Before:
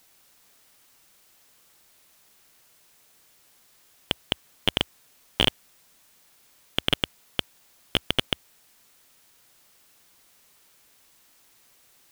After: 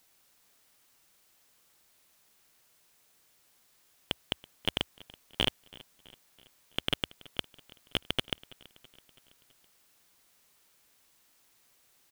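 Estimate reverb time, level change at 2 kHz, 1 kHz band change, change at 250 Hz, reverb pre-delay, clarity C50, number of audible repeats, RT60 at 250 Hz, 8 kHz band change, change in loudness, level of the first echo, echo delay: none, -7.0 dB, -7.0 dB, -7.0 dB, none, none, 3, none, -7.0 dB, -7.0 dB, -22.0 dB, 0.329 s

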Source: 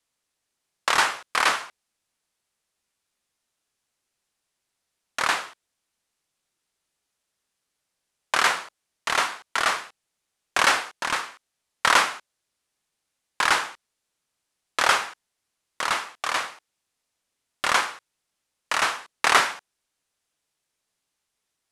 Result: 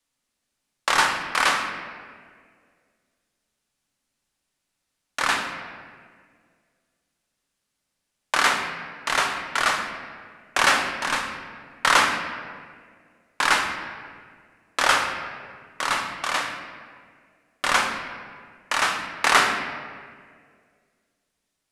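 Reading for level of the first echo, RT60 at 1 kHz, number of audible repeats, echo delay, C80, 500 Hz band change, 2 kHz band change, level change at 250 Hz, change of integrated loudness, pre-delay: none, 1.7 s, none, none, 7.5 dB, +1.5 dB, +1.5 dB, +5.5 dB, +0.5 dB, 3 ms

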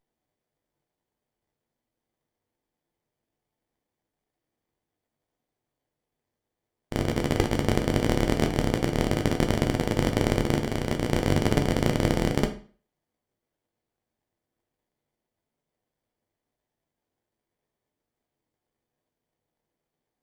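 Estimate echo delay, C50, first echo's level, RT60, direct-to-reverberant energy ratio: none, 11.0 dB, none, 0.40 s, 4.0 dB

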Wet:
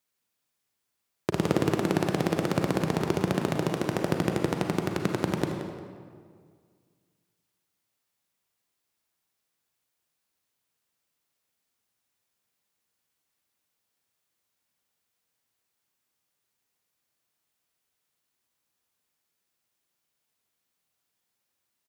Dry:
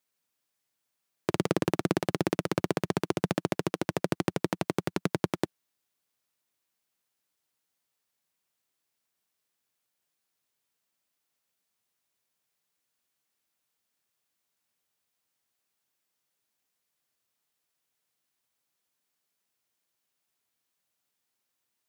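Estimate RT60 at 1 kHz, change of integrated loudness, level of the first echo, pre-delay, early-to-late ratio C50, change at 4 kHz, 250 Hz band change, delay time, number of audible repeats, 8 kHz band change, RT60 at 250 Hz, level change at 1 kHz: 1.9 s, +2.5 dB, -11.5 dB, 34 ms, 3.5 dB, +1.5 dB, +3.0 dB, 0.176 s, 1, +1.0 dB, 2.2 s, +2.5 dB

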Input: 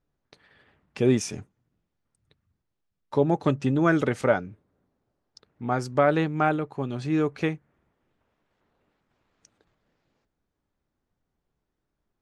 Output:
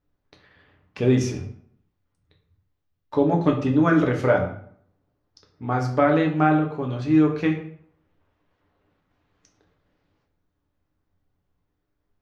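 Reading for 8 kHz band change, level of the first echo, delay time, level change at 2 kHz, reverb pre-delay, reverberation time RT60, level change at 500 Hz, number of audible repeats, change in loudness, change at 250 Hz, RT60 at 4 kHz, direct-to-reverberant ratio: n/a, none, none, +2.0 dB, 5 ms, 0.60 s, +2.0 dB, none, +3.5 dB, +5.5 dB, 0.45 s, 1.0 dB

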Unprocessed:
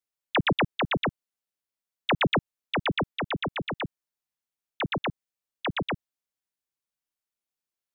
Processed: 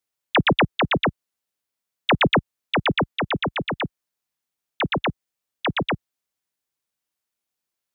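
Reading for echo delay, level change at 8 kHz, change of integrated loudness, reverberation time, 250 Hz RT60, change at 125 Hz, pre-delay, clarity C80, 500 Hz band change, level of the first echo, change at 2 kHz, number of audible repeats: none, n/a, +6.0 dB, none, none, +6.0 dB, none, none, +6.0 dB, none, +6.0 dB, none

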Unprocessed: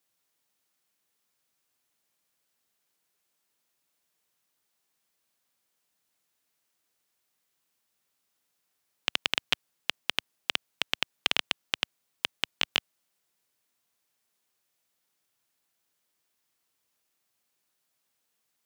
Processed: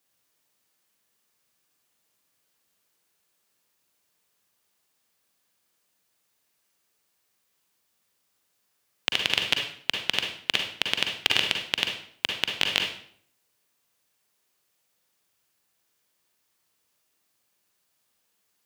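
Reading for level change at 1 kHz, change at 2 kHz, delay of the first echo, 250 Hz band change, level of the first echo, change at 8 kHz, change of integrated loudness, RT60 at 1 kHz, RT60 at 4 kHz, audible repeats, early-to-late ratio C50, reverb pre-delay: +3.0 dB, +5.0 dB, none, +5.5 dB, none, +5.0 dB, +5.0 dB, 0.55 s, 0.50 s, none, 4.0 dB, 39 ms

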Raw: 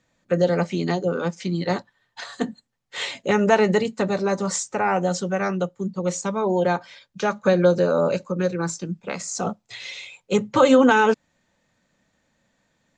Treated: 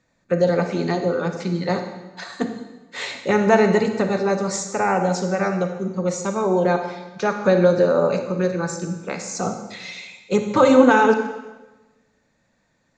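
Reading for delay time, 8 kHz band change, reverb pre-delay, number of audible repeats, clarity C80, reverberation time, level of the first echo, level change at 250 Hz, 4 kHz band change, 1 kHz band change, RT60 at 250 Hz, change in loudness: none, -0.5 dB, 34 ms, none, 8.5 dB, 1.1 s, none, +2.0 dB, -1.5 dB, +2.0 dB, 1.3 s, +2.0 dB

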